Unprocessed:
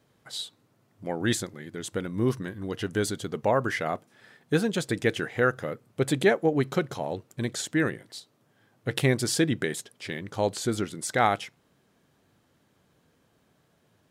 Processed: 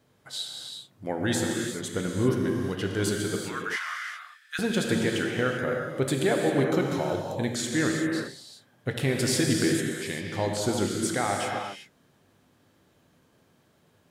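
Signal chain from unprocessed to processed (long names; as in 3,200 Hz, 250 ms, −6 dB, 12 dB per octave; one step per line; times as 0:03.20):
0:03.36–0:04.59: Chebyshev high-pass filter 1,300 Hz, order 4
brickwall limiter −16.5 dBFS, peak gain reduction 8 dB
reverb whose tail is shaped and stops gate 420 ms flat, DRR 0 dB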